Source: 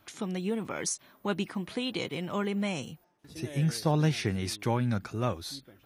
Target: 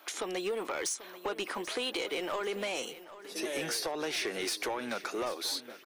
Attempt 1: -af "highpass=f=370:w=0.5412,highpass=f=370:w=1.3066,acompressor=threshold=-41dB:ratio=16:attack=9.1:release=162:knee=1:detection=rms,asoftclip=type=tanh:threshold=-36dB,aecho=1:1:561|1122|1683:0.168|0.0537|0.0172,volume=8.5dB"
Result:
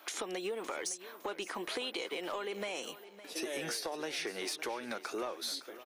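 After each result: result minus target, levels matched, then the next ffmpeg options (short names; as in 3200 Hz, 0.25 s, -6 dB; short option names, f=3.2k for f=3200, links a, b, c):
compressor: peak gain reduction +6 dB; echo 0.226 s early
-af "highpass=f=370:w=0.5412,highpass=f=370:w=1.3066,acompressor=threshold=-34.5dB:ratio=16:attack=9.1:release=162:knee=1:detection=rms,asoftclip=type=tanh:threshold=-36dB,aecho=1:1:561|1122|1683:0.168|0.0537|0.0172,volume=8.5dB"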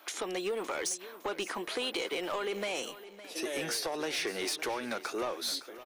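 echo 0.226 s early
-af "highpass=f=370:w=0.5412,highpass=f=370:w=1.3066,acompressor=threshold=-34.5dB:ratio=16:attack=9.1:release=162:knee=1:detection=rms,asoftclip=type=tanh:threshold=-36dB,aecho=1:1:787|1574|2361:0.168|0.0537|0.0172,volume=8.5dB"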